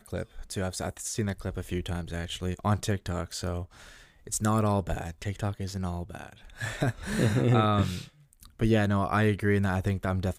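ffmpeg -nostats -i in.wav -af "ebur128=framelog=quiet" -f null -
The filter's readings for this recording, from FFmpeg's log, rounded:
Integrated loudness:
  I:         -29.3 LUFS
  Threshold: -39.8 LUFS
Loudness range:
  LRA:         5.9 LU
  Threshold: -50.0 LUFS
  LRA low:   -32.6 LUFS
  LRA high:  -26.8 LUFS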